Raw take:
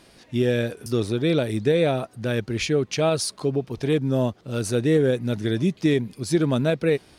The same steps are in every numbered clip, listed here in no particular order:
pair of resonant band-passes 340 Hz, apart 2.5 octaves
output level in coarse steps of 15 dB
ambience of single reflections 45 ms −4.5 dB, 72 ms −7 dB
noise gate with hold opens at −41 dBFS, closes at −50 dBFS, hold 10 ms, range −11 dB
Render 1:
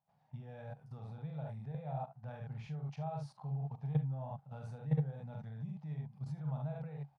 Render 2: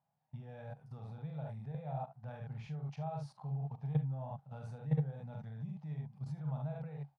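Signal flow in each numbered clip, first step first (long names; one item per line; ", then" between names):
ambience of single reflections, then noise gate with hold, then output level in coarse steps, then pair of resonant band-passes
ambience of single reflections, then output level in coarse steps, then noise gate with hold, then pair of resonant band-passes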